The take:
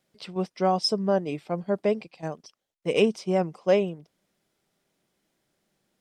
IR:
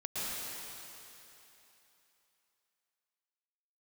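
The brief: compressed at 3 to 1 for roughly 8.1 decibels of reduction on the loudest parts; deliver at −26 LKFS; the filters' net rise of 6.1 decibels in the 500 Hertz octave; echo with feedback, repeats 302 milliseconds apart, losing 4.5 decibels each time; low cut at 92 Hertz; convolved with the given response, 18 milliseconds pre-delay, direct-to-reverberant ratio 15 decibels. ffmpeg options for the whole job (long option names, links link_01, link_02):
-filter_complex "[0:a]highpass=92,equalizer=frequency=500:width_type=o:gain=7.5,acompressor=threshold=-21dB:ratio=3,aecho=1:1:302|604|906|1208|1510|1812|2114|2416|2718:0.596|0.357|0.214|0.129|0.0772|0.0463|0.0278|0.0167|0.01,asplit=2[link_01][link_02];[1:a]atrim=start_sample=2205,adelay=18[link_03];[link_02][link_03]afir=irnorm=-1:irlink=0,volume=-20dB[link_04];[link_01][link_04]amix=inputs=2:normalize=0"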